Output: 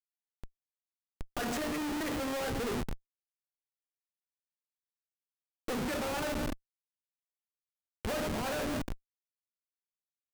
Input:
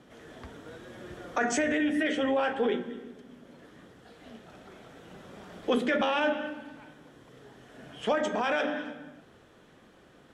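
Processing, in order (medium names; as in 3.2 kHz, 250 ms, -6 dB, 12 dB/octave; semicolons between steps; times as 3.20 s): Schmitt trigger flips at -31.5 dBFS; gain riding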